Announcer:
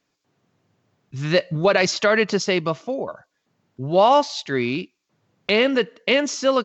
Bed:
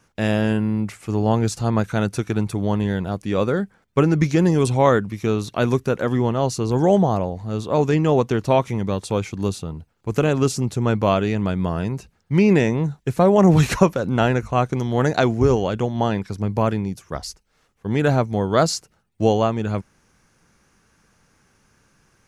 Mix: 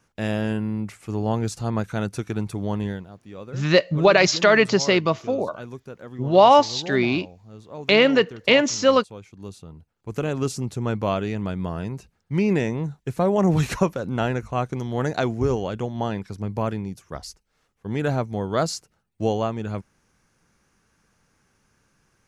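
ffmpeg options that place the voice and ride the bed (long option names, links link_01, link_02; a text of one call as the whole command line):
ffmpeg -i stem1.wav -i stem2.wav -filter_complex "[0:a]adelay=2400,volume=2dB[link_01];[1:a]volume=7.5dB,afade=type=out:start_time=2.87:duration=0.2:silence=0.223872,afade=type=in:start_time=9.28:duration=1.24:silence=0.237137[link_02];[link_01][link_02]amix=inputs=2:normalize=0" out.wav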